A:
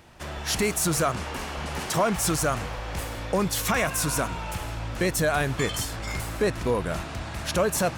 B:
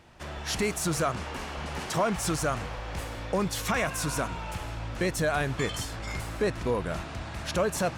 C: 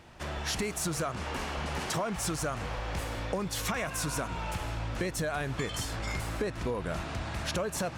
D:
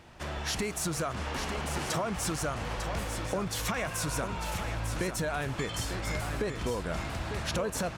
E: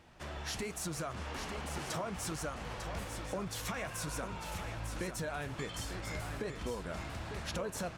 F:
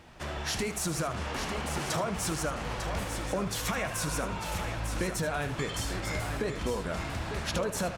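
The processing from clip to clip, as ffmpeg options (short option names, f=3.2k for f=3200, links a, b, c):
-af "highshelf=f=11k:g=-11,volume=-3dB"
-af "acompressor=threshold=-31dB:ratio=6,volume=2dB"
-af "aecho=1:1:899:0.398"
-af "flanger=delay=3.6:depth=8:regen=-65:speed=1.2:shape=sinusoidal,volume=-2.5dB"
-af "aecho=1:1:76:0.251,volume=7dB"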